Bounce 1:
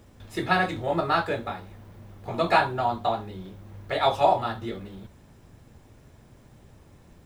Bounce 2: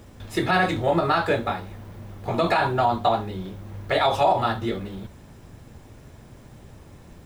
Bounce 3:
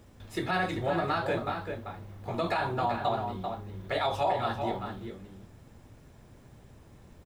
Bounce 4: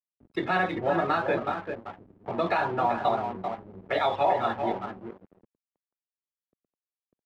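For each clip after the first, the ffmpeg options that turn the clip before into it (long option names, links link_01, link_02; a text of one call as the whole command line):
ffmpeg -i in.wav -af "alimiter=limit=-17dB:level=0:latency=1:release=64,volume=6.5dB" out.wav
ffmpeg -i in.wav -filter_complex "[0:a]asplit=2[link_01][link_02];[link_02]adelay=390.7,volume=-6dB,highshelf=frequency=4000:gain=-8.79[link_03];[link_01][link_03]amix=inputs=2:normalize=0,volume=-8.5dB" out.wav
ffmpeg -i in.wav -filter_complex "[0:a]afftfilt=real='re*gte(hypot(re,im),0.0126)':imag='im*gte(hypot(re,im),0.0126)':win_size=1024:overlap=0.75,aeval=exprs='sgn(val(0))*max(abs(val(0))-0.00531,0)':channel_layout=same,acrossover=split=160 3800:gain=0.224 1 0.178[link_01][link_02][link_03];[link_01][link_02][link_03]amix=inputs=3:normalize=0,volume=5dB" out.wav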